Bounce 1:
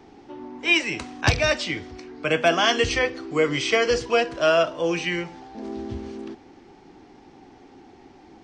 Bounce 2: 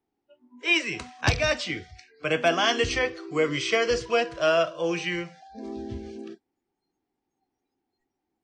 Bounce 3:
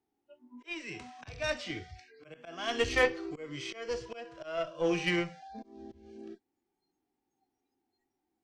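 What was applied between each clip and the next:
spectral noise reduction 30 dB; trim -3 dB
slow attack 672 ms; harmonic-percussive split percussive -11 dB; Chebyshev shaper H 6 -25 dB, 7 -31 dB, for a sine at -16 dBFS; trim +2.5 dB

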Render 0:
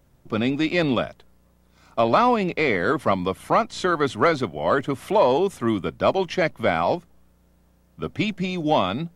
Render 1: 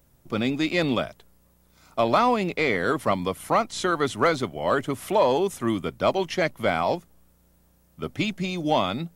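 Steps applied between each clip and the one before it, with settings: treble shelf 7 kHz +12 dB; trim -2.5 dB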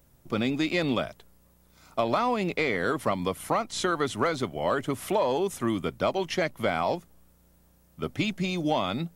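compression 4:1, threshold -22 dBFS, peak gain reduction 6.5 dB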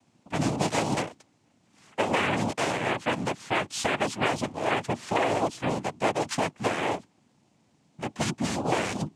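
noise-vocoded speech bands 4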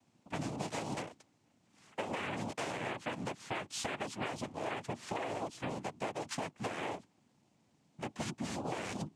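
compression, threshold -29 dBFS, peak gain reduction 9 dB; trim -6 dB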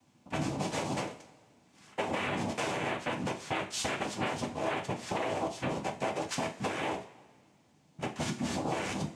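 two-slope reverb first 0.35 s, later 1.8 s, from -19 dB, DRR 2.5 dB; trim +3.5 dB

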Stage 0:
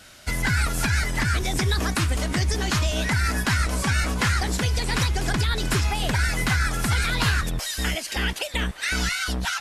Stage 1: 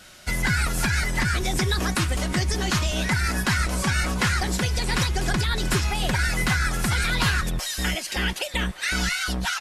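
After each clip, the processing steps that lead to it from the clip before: comb 5.5 ms, depth 31%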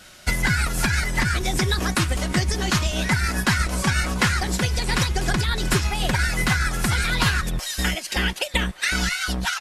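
transient shaper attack +5 dB, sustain -4 dB; trim +1 dB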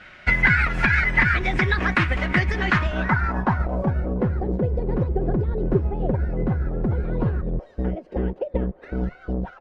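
low-pass sweep 2.1 kHz -> 480 Hz, 2.63–4.08 s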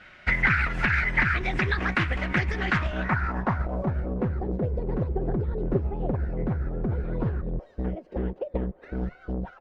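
loudspeaker Doppler distortion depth 0.33 ms; trim -4.5 dB

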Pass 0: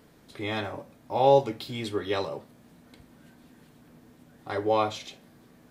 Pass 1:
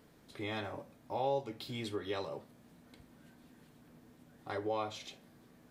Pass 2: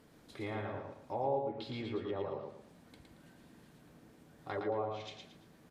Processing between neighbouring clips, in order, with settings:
compression 2:1, threshold -31 dBFS, peak gain reduction 9.5 dB; trim -5.5 dB
low-pass that closes with the level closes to 920 Hz, closed at -33 dBFS; feedback delay 113 ms, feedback 32%, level -4 dB

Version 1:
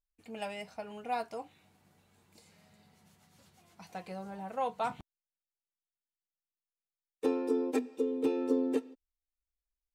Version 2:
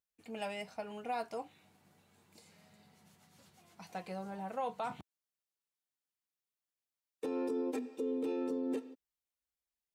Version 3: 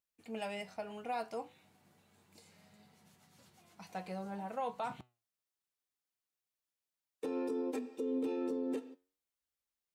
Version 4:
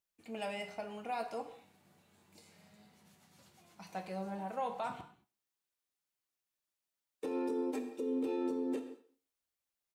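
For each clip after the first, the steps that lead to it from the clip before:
high-pass 100 Hz; peak limiter -28.5 dBFS, peak gain reduction 11 dB
flange 0.61 Hz, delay 7.4 ms, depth 3.7 ms, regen +84%; trim +4 dB
speakerphone echo 130 ms, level -22 dB; gated-style reverb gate 250 ms falling, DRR 7 dB

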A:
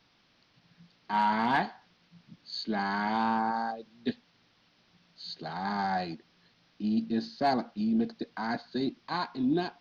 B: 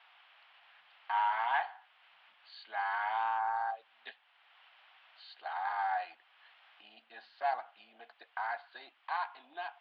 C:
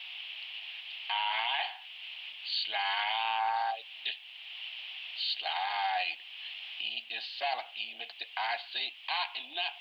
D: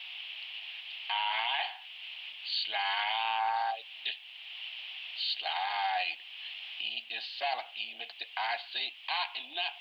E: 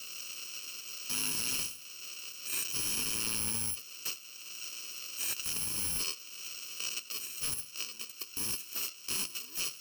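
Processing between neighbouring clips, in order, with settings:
compression 1.5:1, threshold -56 dBFS, peak gain reduction 12 dB; Chebyshev band-pass 740–3100 Hz, order 3; trim +8.5 dB
resonant high shelf 2 kHz +11.5 dB, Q 3; peak limiter -27 dBFS, peak gain reduction 11.5 dB; trim +5.5 dB
no audible change
bit-reversed sample order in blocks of 64 samples; slew-rate limiter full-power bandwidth 320 Hz

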